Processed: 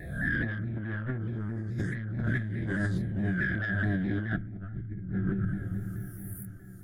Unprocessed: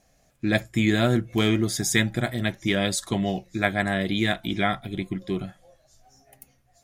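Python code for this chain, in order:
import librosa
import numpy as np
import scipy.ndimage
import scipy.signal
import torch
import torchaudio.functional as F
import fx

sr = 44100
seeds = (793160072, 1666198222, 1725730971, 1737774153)

y = fx.spec_swells(x, sr, rise_s=1.57)
y = fx.env_phaser(y, sr, low_hz=190.0, high_hz=3700.0, full_db=-15.0)
y = fx.curve_eq(y, sr, hz=(120.0, 290.0, 970.0, 1600.0, 2500.0, 6500.0, 9800.0), db=(0, -8, -27, 2, -28, -27, -8))
y = 10.0 ** (-22.0 / 20.0) * np.tanh(y / 10.0 ** (-22.0 / 20.0))
y = fx.riaa(y, sr, side='playback', at=(4.37, 5.09))
y = fx.env_lowpass_down(y, sr, base_hz=2300.0, full_db=-23.5)
y = fx.doubler(y, sr, ms=27.0, db=-2.5)
y = fx.echo_diffused(y, sr, ms=525, feedback_pct=45, wet_db=-16.0)
y = fx.over_compress(y, sr, threshold_db=-32.0, ratio=-1.0)
y = fx.vibrato_shape(y, sr, shape='saw_down', rate_hz=4.7, depth_cents=100.0)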